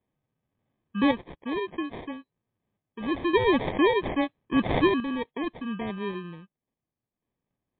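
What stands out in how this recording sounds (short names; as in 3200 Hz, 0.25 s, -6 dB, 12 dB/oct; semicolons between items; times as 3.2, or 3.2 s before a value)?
random-step tremolo 1.8 Hz, depth 75%; aliases and images of a low sample rate 1400 Hz, jitter 0%; MP3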